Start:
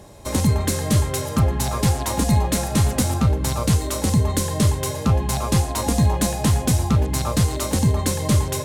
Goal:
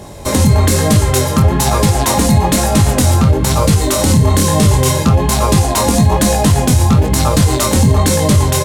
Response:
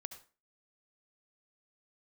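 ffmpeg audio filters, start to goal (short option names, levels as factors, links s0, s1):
-filter_complex "[0:a]flanger=delay=19:depth=5.9:speed=1.1,asplit=3[s0][s1][s2];[s0]afade=t=out:st=3.98:d=0.02[s3];[s1]asplit=2[s4][s5];[s5]adelay=31,volume=0.596[s6];[s4][s6]amix=inputs=2:normalize=0,afade=t=in:st=3.98:d=0.02,afade=t=out:st=5.04:d=0.02[s7];[s2]afade=t=in:st=5.04:d=0.02[s8];[s3][s7][s8]amix=inputs=3:normalize=0,alimiter=level_in=6.31:limit=0.891:release=50:level=0:latency=1,volume=0.891"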